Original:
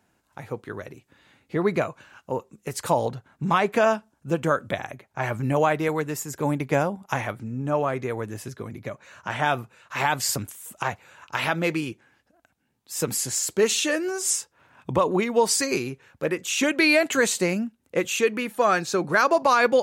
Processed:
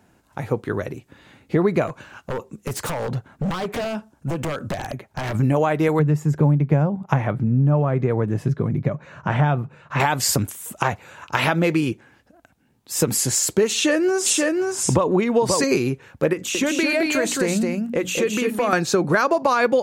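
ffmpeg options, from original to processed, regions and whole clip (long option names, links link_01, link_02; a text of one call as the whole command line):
ffmpeg -i in.wav -filter_complex "[0:a]asettb=1/sr,asplit=3[link_01][link_02][link_03];[link_01]atrim=end=1.874[link_04];[link_02]atrim=start=1.87:end=5.35,asetpts=PTS-STARTPTS,afade=type=in:duration=0.004:curve=qsin,afade=type=out:start_time=3.476:duration=0.004:curve=qsin,acompressor=threshold=-27dB:ratio=10:attack=3.2:release=140:knee=1:detection=peak,aeval=exprs='0.0335*(abs(mod(val(0)/0.0335+3,4)-2)-1)':channel_layout=same[link_05];[link_03]atrim=start=5.346[link_06];[link_04][link_05]acrossfade=duration=0.004:curve1=hsin:curve2=qsin[link_07];[link_07][link_06]acrossfade=duration=0.004:curve1=qsin:curve2=hsin,asettb=1/sr,asplit=3[link_08][link_09][link_10];[link_08]atrim=end=5.994[link_11];[link_09]atrim=start=5.99:end=10,asetpts=PTS-STARTPTS,afade=type=in:duration=0.004:curve=qsin,afade=type=out:start_time=4.006:duration=0.004:curve=qsin,lowpass=frequency=1600:poles=1,equalizer=frequency=150:width_type=o:width=0.43:gain=12.5[link_12];[link_10]atrim=start=9.996[link_13];[link_11][link_12]acrossfade=duration=0.004:curve1=hsin:curve2=qsin[link_14];[link_14][link_13]acrossfade=duration=0.004:curve1=qsin:curve2=hsin,asettb=1/sr,asplit=3[link_15][link_16][link_17];[link_15]atrim=end=13.734[link_18];[link_16]atrim=start=13.73:end=15.64,asetpts=PTS-STARTPTS,afade=type=in:duration=0.004:curve=qsin,afade=type=out:start_time=1.906:duration=0.004:curve=qsin,highshelf=frequency=12000:gain=-9.5,aecho=1:1:531:0.596,atrim=end_sample=84231[link_19];[link_17]atrim=start=15.636[link_20];[link_18][link_19]acrossfade=duration=0.004:curve1=hsin:curve2=qsin[link_21];[link_21][link_20]acrossfade=duration=0.004:curve1=qsin:curve2=hsin,asettb=1/sr,asplit=3[link_22][link_23][link_24];[link_22]atrim=end=16.334[link_25];[link_23]atrim=start=16.33:end=18.73,asetpts=PTS-STARTPTS,afade=type=in:duration=0.004:curve=qsin,afade=type=out:start_time=2.396:duration=0.004:curve=qsin,bandreject=frequency=60:width_type=h:width=6,bandreject=frequency=120:width_type=h:width=6,bandreject=frequency=180:width_type=h:width=6,bandreject=frequency=240:width_type=h:width=6,bandreject=frequency=300:width_type=h:width=6,acompressor=threshold=-33dB:ratio=2:attack=3.2:release=140:knee=1:detection=peak,aecho=1:1:216:0.631,atrim=end_sample=105840[link_26];[link_24]atrim=start=18.726[link_27];[link_25][link_26]acrossfade=duration=0.004:curve1=hsin:curve2=qsin[link_28];[link_28][link_27]acrossfade=duration=0.004:curve1=qsin:curve2=hsin,tiltshelf=frequency=700:gain=3,acompressor=threshold=-24dB:ratio=6,volume=9dB" out.wav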